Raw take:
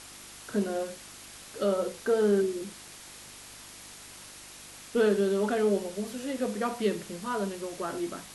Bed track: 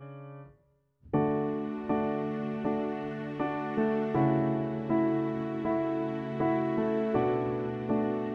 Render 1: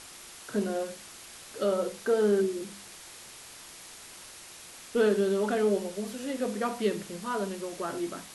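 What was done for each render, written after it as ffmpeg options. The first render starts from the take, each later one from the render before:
-af "bandreject=f=50:t=h:w=4,bandreject=f=100:t=h:w=4,bandreject=f=150:t=h:w=4,bandreject=f=200:t=h:w=4,bandreject=f=250:t=h:w=4,bandreject=f=300:t=h:w=4"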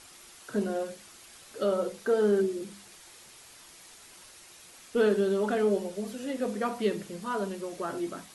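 -af "afftdn=nr=6:nf=-48"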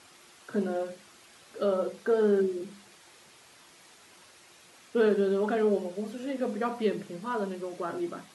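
-af "highpass=100,aemphasis=mode=reproduction:type=cd"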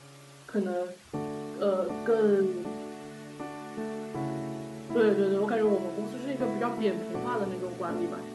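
-filter_complex "[1:a]volume=-7.5dB[a];[0:a][a]amix=inputs=2:normalize=0"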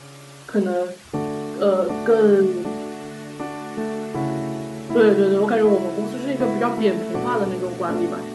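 -af "volume=9dB"

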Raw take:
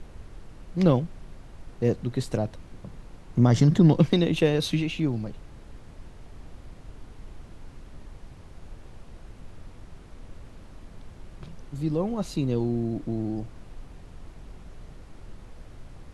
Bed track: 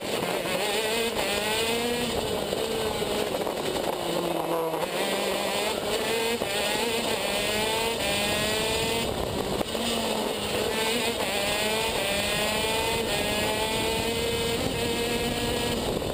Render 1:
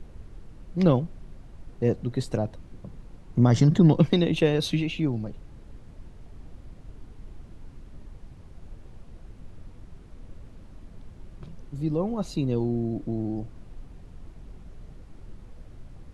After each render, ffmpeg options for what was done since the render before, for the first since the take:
-af "afftdn=nr=6:nf=-47"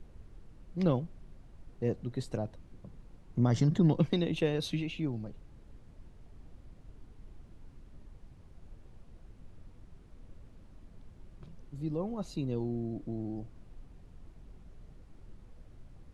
-af "volume=-8dB"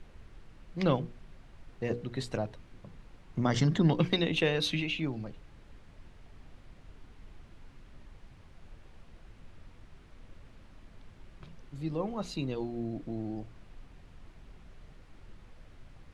-af "equalizer=f=2.3k:t=o:w=2.9:g=10,bandreject=f=60:t=h:w=6,bandreject=f=120:t=h:w=6,bandreject=f=180:t=h:w=6,bandreject=f=240:t=h:w=6,bandreject=f=300:t=h:w=6,bandreject=f=360:t=h:w=6,bandreject=f=420:t=h:w=6,bandreject=f=480:t=h:w=6"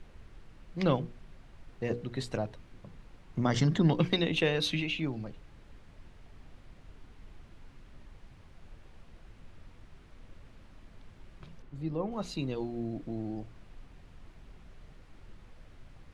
-filter_complex "[0:a]asettb=1/sr,asplit=3[a][b][c];[a]atrim=end=11.624[d];[b]atrim=start=11.62:end=12.12,asetpts=PTS-STARTPTS,afade=t=in:d=0.004:c=qsin,afade=t=out:st=0.496:d=0.004:c=qsin,highshelf=f=2.7k:g=-9.5[e];[c]atrim=start=12.116[f];[d][e]acrossfade=d=0.004:c1=hsin:c2=qsin[g];[g][f]acrossfade=d=0.004:c1=qsin:c2=hsin"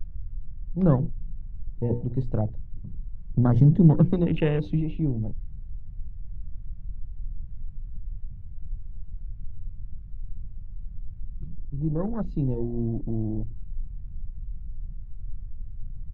-af "aemphasis=mode=reproduction:type=riaa,afwtdn=0.0178"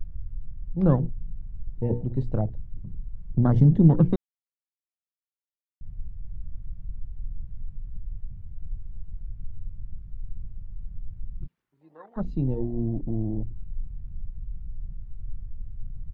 -filter_complex "[0:a]asplit=3[a][b][c];[a]afade=t=out:st=11.46:d=0.02[d];[b]highpass=1.3k,afade=t=in:st=11.46:d=0.02,afade=t=out:st=12.16:d=0.02[e];[c]afade=t=in:st=12.16:d=0.02[f];[d][e][f]amix=inputs=3:normalize=0,asplit=3[g][h][i];[g]atrim=end=4.16,asetpts=PTS-STARTPTS,afade=t=out:st=4.156:d=0.004:c=hsin[j];[h]atrim=start=4.16:end=5.81,asetpts=PTS-STARTPTS,volume=0[k];[i]atrim=start=5.81,asetpts=PTS-STARTPTS,afade=t=in:d=0.004:c=hsin[l];[j][k][l]concat=n=3:v=0:a=1"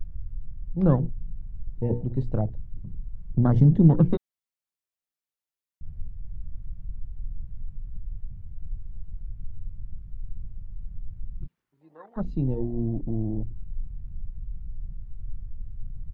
-filter_complex "[0:a]asettb=1/sr,asplit=3[a][b][c];[a]atrim=end=4.094[d];[b]atrim=start=4.09:end=6.07,asetpts=PTS-STARTPTS,afade=t=in:d=0.004:c=qsin,afade=t=out:st=1.976:d=0.004:c=qsin,asplit=2[e][f];[f]adelay=13,volume=-4.5dB[g];[e][g]amix=inputs=2:normalize=0,atrim=end_sample=87318[h];[c]atrim=start=6.066[i];[d][h]acrossfade=d=0.004:c1=hsin:c2=qsin[j];[j][i]acrossfade=d=0.004:c1=qsin:c2=hsin"

